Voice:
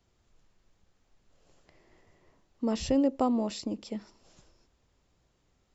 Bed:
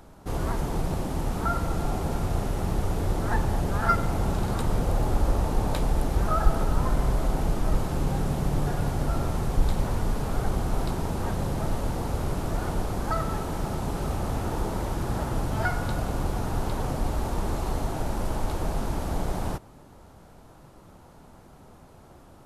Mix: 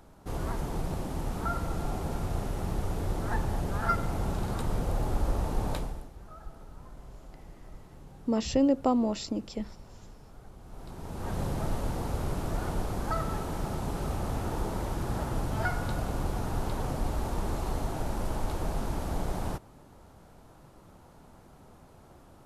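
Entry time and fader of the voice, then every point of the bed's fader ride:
5.65 s, +1.5 dB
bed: 5.75 s -5 dB
6.13 s -23.5 dB
10.58 s -23.5 dB
11.38 s -3.5 dB

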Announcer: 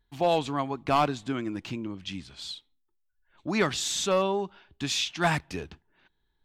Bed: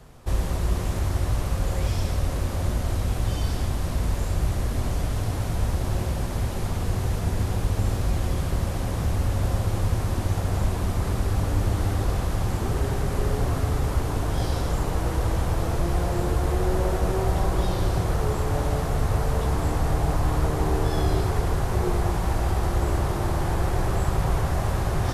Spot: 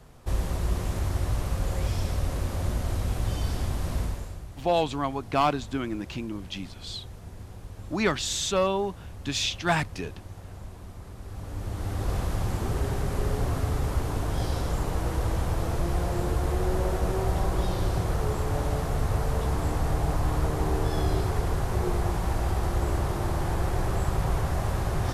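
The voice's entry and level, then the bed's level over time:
4.45 s, +0.5 dB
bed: 4 s -3 dB
4.46 s -17.5 dB
11.16 s -17.5 dB
12.15 s -3 dB

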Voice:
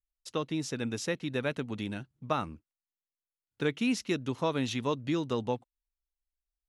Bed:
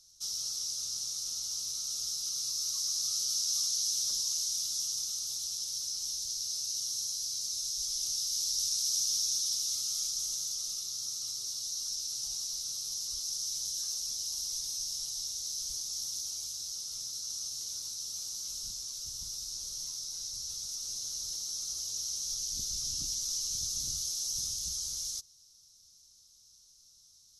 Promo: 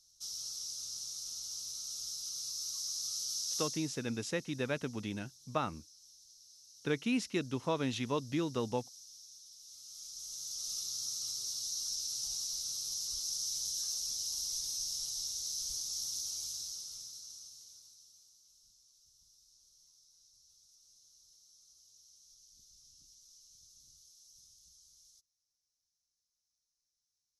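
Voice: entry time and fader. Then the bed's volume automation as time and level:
3.25 s, -3.5 dB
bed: 3.62 s -6 dB
4.04 s -23.5 dB
9.53 s -23.5 dB
10.76 s -1.5 dB
16.56 s -1.5 dB
18.41 s -26 dB

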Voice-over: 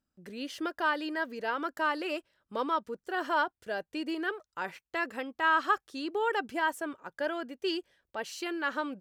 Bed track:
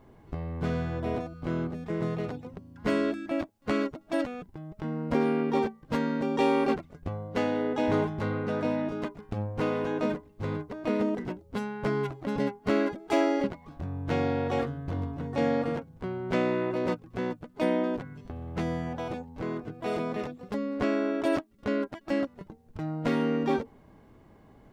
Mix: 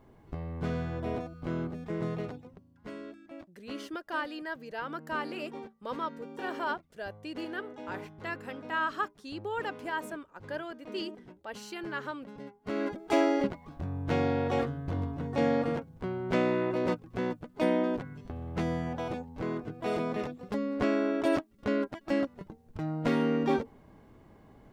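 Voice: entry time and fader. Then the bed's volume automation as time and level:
3.30 s, -5.0 dB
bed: 2.2 s -3 dB
2.9 s -16.5 dB
12.48 s -16.5 dB
12.97 s -0.5 dB

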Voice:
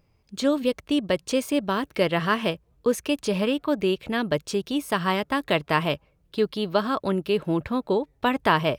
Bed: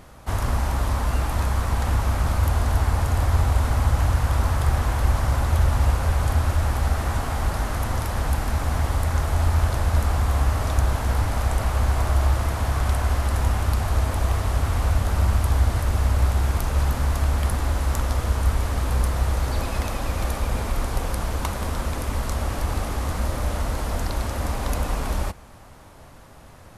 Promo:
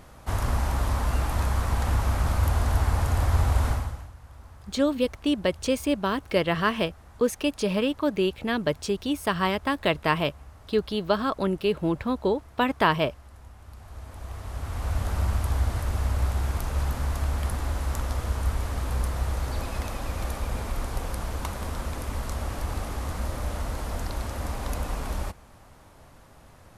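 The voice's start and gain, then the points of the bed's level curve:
4.35 s, -1.0 dB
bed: 3.7 s -2.5 dB
4.13 s -26 dB
13.56 s -26 dB
15.02 s -5.5 dB

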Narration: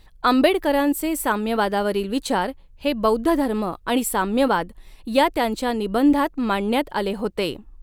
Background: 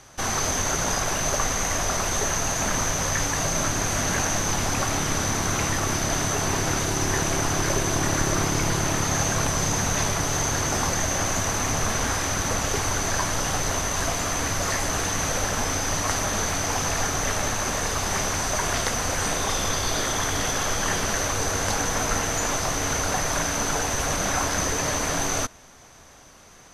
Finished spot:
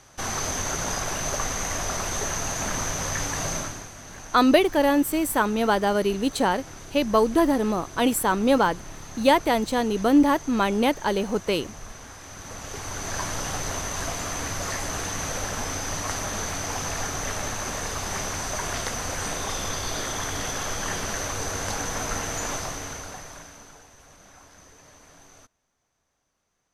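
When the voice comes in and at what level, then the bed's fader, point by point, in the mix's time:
4.10 s, -0.5 dB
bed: 3.54 s -3.5 dB
3.93 s -18 dB
12.17 s -18 dB
13.22 s -4.5 dB
22.55 s -4.5 dB
23.92 s -26.5 dB

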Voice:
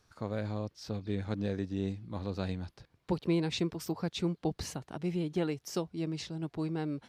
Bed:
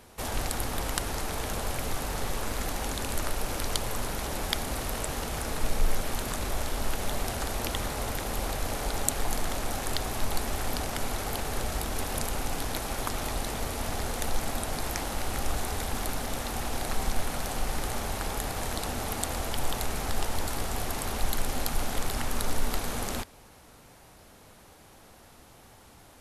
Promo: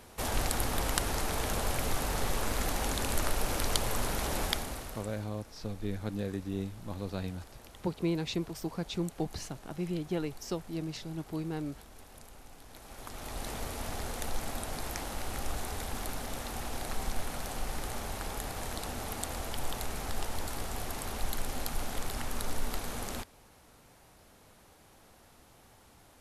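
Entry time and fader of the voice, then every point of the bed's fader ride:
4.75 s, -1.5 dB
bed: 4.43 s 0 dB
5.34 s -21 dB
12.63 s -21 dB
13.48 s -5.5 dB

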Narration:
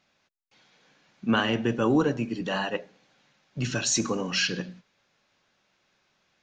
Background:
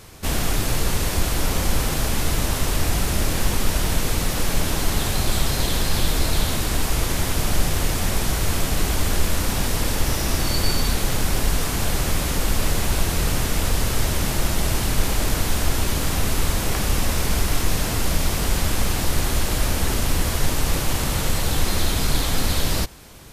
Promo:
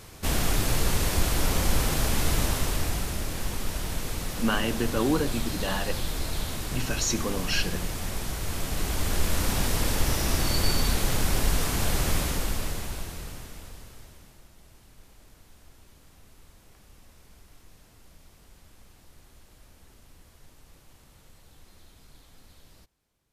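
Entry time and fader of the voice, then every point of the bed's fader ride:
3.15 s, -2.5 dB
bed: 2.42 s -3 dB
3.23 s -10 dB
8.42 s -10 dB
9.45 s -3.5 dB
12.17 s -3.5 dB
14.49 s -33 dB

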